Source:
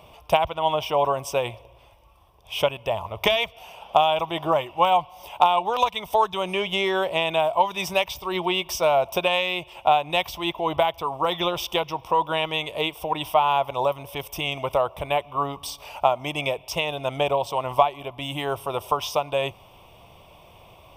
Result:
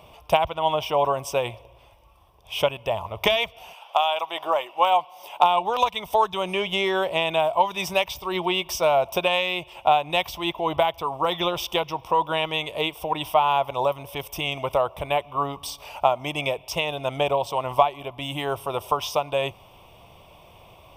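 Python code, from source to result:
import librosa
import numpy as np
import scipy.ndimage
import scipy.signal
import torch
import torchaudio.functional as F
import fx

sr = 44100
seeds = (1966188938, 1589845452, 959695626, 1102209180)

y = fx.highpass(x, sr, hz=fx.line((3.73, 950.0), (5.42, 270.0)), slope=12, at=(3.73, 5.42), fade=0.02)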